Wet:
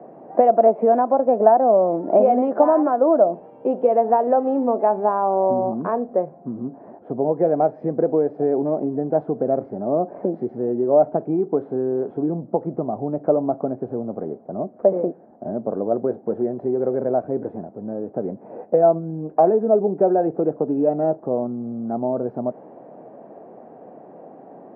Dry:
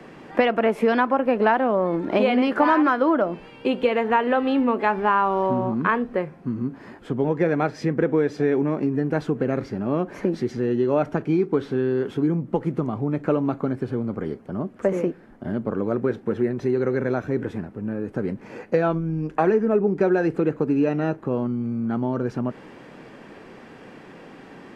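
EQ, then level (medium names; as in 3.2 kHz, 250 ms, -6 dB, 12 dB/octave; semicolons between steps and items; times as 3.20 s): high-pass 150 Hz 12 dB/octave; resonant low-pass 680 Hz, resonance Q 4.9; distance through air 63 m; -2.5 dB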